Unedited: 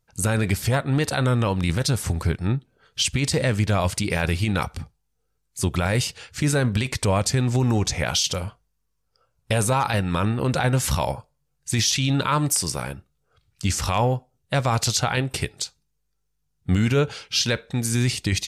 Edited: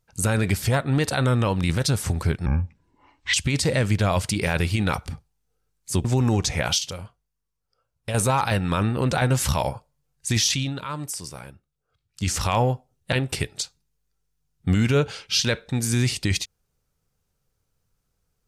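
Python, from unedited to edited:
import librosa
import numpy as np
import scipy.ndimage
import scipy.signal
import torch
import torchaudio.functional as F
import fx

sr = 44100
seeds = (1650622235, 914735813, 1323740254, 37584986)

y = fx.edit(x, sr, fx.speed_span(start_s=2.46, length_s=0.56, speed=0.64),
    fx.cut(start_s=5.73, length_s=1.74),
    fx.clip_gain(start_s=8.21, length_s=1.36, db=-7.0),
    fx.fade_down_up(start_s=11.93, length_s=1.82, db=-10.0, fade_s=0.23),
    fx.cut(start_s=14.55, length_s=0.59), tone=tone)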